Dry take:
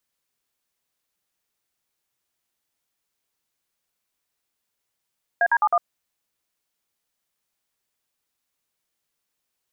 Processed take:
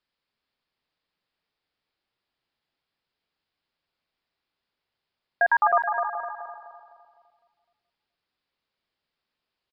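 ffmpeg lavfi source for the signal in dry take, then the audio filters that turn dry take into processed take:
-f lavfi -i "aevalsrc='0.126*clip(min(mod(t,0.105),0.054-mod(t,0.105))/0.002,0,1)*(eq(floor(t/0.105),0)*(sin(2*PI*697*mod(t,0.105))+sin(2*PI*1633*mod(t,0.105)))+eq(floor(t/0.105),1)*(sin(2*PI*941*mod(t,0.105))+sin(2*PI*1633*mod(t,0.105)))+eq(floor(t/0.105),2)*(sin(2*PI*852*mod(t,0.105))+sin(2*PI*1209*mod(t,0.105)))+eq(floor(t/0.105),3)*(sin(2*PI*697*mod(t,0.105))+sin(2*PI*1209*mod(t,0.105))))':d=0.42:s=44100"
-filter_complex "[0:a]asplit=2[a][b];[b]aecho=0:1:425|850:0.282|0.0479[c];[a][c]amix=inputs=2:normalize=0,aresample=11025,aresample=44100,asplit=2[d][e];[e]adelay=254,lowpass=f=1.5k:p=1,volume=-5dB,asplit=2[f][g];[g]adelay=254,lowpass=f=1.5k:p=1,volume=0.47,asplit=2[h][i];[i]adelay=254,lowpass=f=1.5k:p=1,volume=0.47,asplit=2[j][k];[k]adelay=254,lowpass=f=1.5k:p=1,volume=0.47,asplit=2[l][m];[m]adelay=254,lowpass=f=1.5k:p=1,volume=0.47,asplit=2[n][o];[o]adelay=254,lowpass=f=1.5k:p=1,volume=0.47[p];[f][h][j][l][n][p]amix=inputs=6:normalize=0[q];[d][q]amix=inputs=2:normalize=0"

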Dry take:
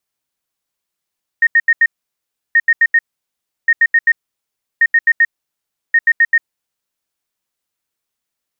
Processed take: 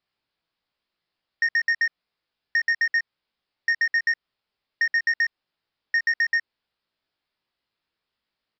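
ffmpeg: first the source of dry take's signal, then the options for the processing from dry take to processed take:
-f lavfi -i "aevalsrc='0.473*sin(2*PI*1850*t)*clip(min(mod(mod(t,1.13),0.13),0.05-mod(mod(t,1.13),0.13))/0.005,0,1)*lt(mod(t,1.13),0.52)':d=5.65:s=44100"
-filter_complex "[0:a]aresample=11025,asoftclip=type=tanh:threshold=-16.5dB,aresample=44100,asplit=2[a][b];[b]adelay=18,volume=-3.5dB[c];[a][c]amix=inputs=2:normalize=0,acompressor=threshold=-20dB:ratio=3"

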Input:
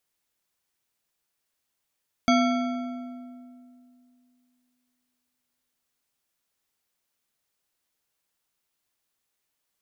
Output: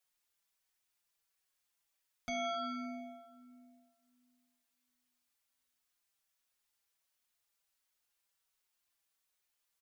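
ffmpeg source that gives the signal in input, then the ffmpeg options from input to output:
-f lavfi -i "aevalsrc='0.126*pow(10,-3*t/2.71)*sin(2*PI*249*t)+0.0891*pow(10,-3*t/1.999)*sin(2*PI*686.5*t)+0.0631*pow(10,-3*t/1.634)*sin(2*PI*1345.6*t)+0.0447*pow(10,-3*t/1.405)*sin(2*PI*2224.3*t)+0.0316*pow(10,-3*t/1.246)*sin(2*PI*3321.7*t)+0.0224*pow(10,-3*t/1.127)*sin(2*PI*4641.4*t)+0.0158*pow(10,-3*t/1.034)*sin(2*PI*6177.7*t)':d=5.86:s=44100"
-filter_complex "[0:a]equalizer=f=210:t=o:w=2.8:g=-9.5,alimiter=level_in=1.5dB:limit=-24dB:level=0:latency=1:release=19,volume=-1.5dB,asplit=2[a][b];[b]adelay=4.9,afreqshift=-1.4[c];[a][c]amix=inputs=2:normalize=1"

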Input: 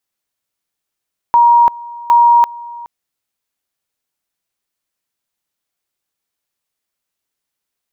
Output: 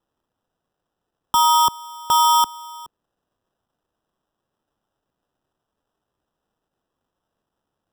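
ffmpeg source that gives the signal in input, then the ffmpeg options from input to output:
-f lavfi -i "aevalsrc='pow(10,(-5-21.5*gte(mod(t,0.76),0.34))/20)*sin(2*PI*947*t)':d=1.52:s=44100"
-filter_complex "[0:a]equalizer=f=620:t=o:w=0.92:g=-13.5,acrossover=split=190|450|710[a][b][c][d];[d]acrusher=samples=20:mix=1:aa=0.000001[e];[a][b][c][e]amix=inputs=4:normalize=0"

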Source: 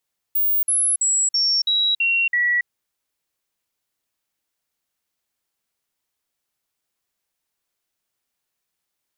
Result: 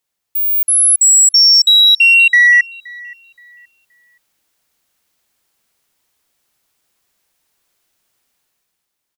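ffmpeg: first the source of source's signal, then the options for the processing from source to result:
-f lavfi -i "aevalsrc='0.158*clip(min(mod(t,0.33),0.28-mod(t,0.33))/0.005,0,1)*sin(2*PI*15500*pow(2,-floor(t/0.33)/2)*mod(t,0.33))':d=2.31:s=44100"
-filter_complex "[0:a]dynaudnorm=f=120:g=13:m=10dB,asplit=2[a][b];[b]asoftclip=type=tanh:threshold=-15dB,volume=-8dB[c];[a][c]amix=inputs=2:normalize=0,asplit=2[d][e];[e]adelay=523,lowpass=f=2k:p=1,volume=-20.5dB,asplit=2[f][g];[g]adelay=523,lowpass=f=2k:p=1,volume=0.38,asplit=2[h][i];[i]adelay=523,lowpass=f=2k:p=1,volume=0.38[j];[d][f][h][j]amix=inputs=4:normalize=0"

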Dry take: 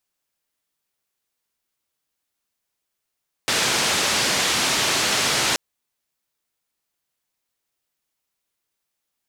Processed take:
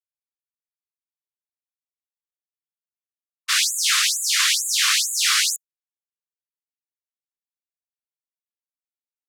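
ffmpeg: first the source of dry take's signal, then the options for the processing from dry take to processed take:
-f lavfi -i "anoisesrc=c=white:d=2.08:r=44100:seed=1,highpass=f=100,lowpass=f=6000,volume=-10.7dB"
-af "agate=range=-33dB:threshold=-17dB:ratio=3:detection=peak,acontrast=67,afftfilt=real='re*gte(b*sr/1024,990*pow(6800/990,0.5+0.5*sin(2*PI*2.2*pts/sr)))':imag='im*gte(b*sr/1024,990*pow(6800/990,0.5+0.5*sin(2*PI*2.2*pts/sr)))':win_size=1024:overlap=0.75"

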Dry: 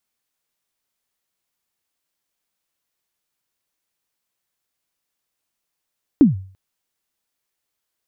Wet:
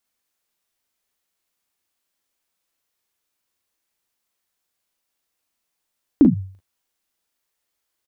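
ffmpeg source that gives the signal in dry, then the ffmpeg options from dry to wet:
-f lavfi -i "aevalsrc='0.631*pow(10,-3*t/0.45)*sin(2*PI*(320*0.144/log(95/320)*(exp(log(95/320)*min(t,0.144)/0.144)-1)+95*max(t-0.144,0)))':d=0.34:s=44100"
-filter_complex "[0:a]equalizer=f=140:t=o:w=0.34:g=-9,asplit=2[a][b];[b]aecho=0:1:39|51:0.596|0.299[c];[a][c]amix=inputs=2:normalize=0"

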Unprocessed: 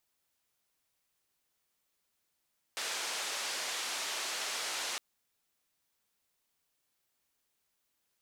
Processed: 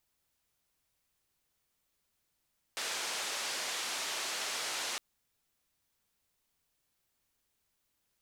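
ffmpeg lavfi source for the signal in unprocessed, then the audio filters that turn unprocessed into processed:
-f lavfi -i "anoisesrc=c=white:d=2.21:r=44100:seed=1,highpass=f=490,lowpass=f=6500,volume=-26.8dB"
-af "lowshelf=f=140:g=10.5"

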